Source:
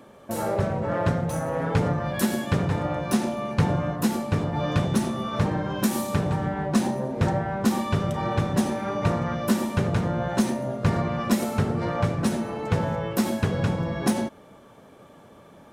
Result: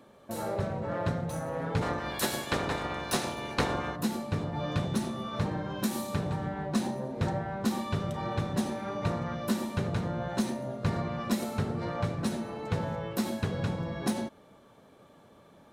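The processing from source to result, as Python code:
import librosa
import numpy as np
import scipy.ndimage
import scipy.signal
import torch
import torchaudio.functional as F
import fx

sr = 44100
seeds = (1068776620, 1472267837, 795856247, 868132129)

y = fx.spec_clip(x, sr, under_db=18, at=(1.81, 3.95), fade=0.02)
y = fx.peak_eq(y, sr, hz=4000.0, db=5.5, octaves=0.29)
y = y * librosa.db_to_amplitude(-7.0)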